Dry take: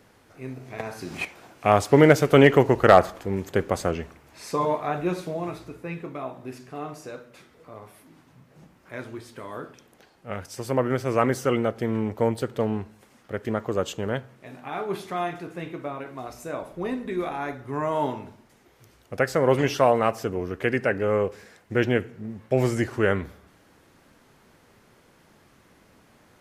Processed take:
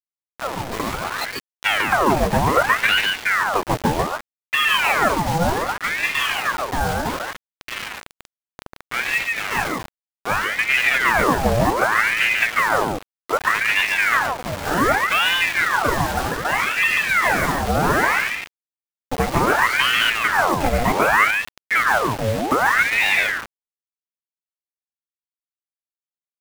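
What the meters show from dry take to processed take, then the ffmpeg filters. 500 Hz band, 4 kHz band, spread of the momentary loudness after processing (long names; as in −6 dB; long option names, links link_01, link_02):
−2.0 dB, +15.5 dB, 11 LU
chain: -filter_complex "[0:a]afftfilt=real='re*pow(10,14/40*sin(2*PI*(0.77*log(max(b,1)*sr/1024/100)/log(2)-(-1.4)*(pts-256)/sr)))':imag='im*pow(10,14/40*sin(2*PI*(0.77*log(max(b,1)*sr/1024/100)/log(2)-(-1.4)*(pts-256)/sr)))':win_size=1024:overlap=0.75,lowpass=1200,equalizer=frequency=600:width=7.5:gain=-11.5,dynaudnorm=framelen=170:gausssize=31:maxgain=6dB,asplit=2[link_01][link_02];[link_02]alimiter=limit=-11.5dB:level=0:latency=1:release=82,volume=1dB[link_03];[link_01][link_03]amix=inputs=2:normalize=0,acompressor=threshold=-15dB:ratio=5,acrusher=bits=4:mix=0:aa=0.000001,aeval=exprs='0.562*(cos(1*acos(clip(val(0)/0.562,-1,1)))-cos(1*PI/2))+0.0708*(cos(5*acos(clip(val(0)/0.562,-1,1)))-cos(5*PI/2))':channel_layout=same,aecho=1:1:143:0.708,aeval=exprs='val(0)*sin(2*PI*1300*n/s+1300*0.75/0.65*sin(2*PI*0.65*n/s))':channel_layout=same"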